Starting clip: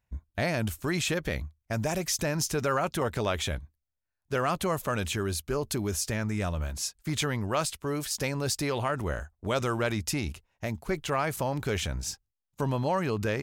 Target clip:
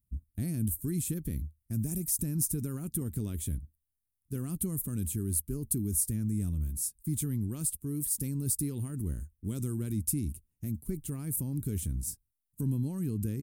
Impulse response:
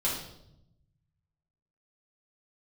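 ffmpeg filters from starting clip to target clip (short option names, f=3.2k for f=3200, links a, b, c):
-af "firequalizer=gain_entry='entry(270,0);entry(590,-29);entry(6300,-12);entry(9100,8)':delay=0.05:min_phase=1"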